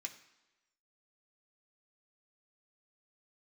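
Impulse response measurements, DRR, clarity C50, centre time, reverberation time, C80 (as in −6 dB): 3.0 dB, 12.5 dB, 11 ms, 1.1 s, 14.5 dB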